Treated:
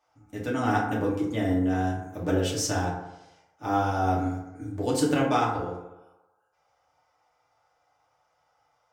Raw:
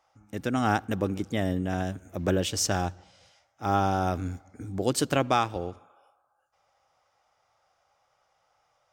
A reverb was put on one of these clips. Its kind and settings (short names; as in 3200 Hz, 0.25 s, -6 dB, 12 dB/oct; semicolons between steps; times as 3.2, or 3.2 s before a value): FDN reverb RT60 0.93 s, low-frequency decay 0.85×, high-frequency decay 0.4×, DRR -5.5 dB; gain -6.5 dB